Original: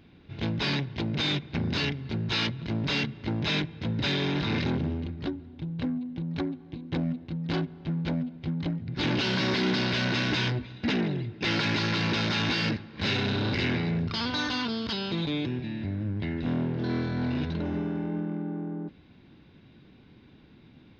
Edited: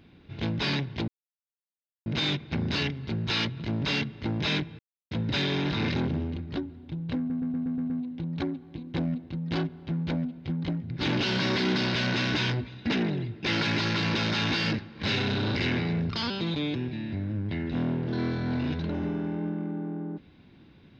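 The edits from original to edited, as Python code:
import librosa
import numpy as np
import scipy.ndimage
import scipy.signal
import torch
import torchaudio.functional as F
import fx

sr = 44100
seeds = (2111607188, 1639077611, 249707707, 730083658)

y = fx.edit(x, sr, fx.insert_silence(at_s=1.08, length_s=0.98),
    fx.insert_silence(at_s=3.81, length_s=0.32),
    fx.stutter(start_s=5.88, slice_s=0.12, count=7),
    fx.cut(start_s=14.28, length_s=0.73), tone=tone)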